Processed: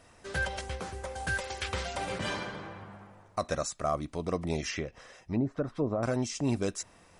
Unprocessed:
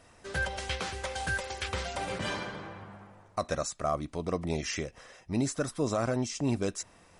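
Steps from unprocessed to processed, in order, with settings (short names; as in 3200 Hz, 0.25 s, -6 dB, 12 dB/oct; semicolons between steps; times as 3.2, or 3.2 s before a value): 0.61–1.27 bell 3300 Hz -11.5 dB 2.4 oct; 4.68–6.03 treble ducked by the level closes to 760 Hz, closed at -25 dBFS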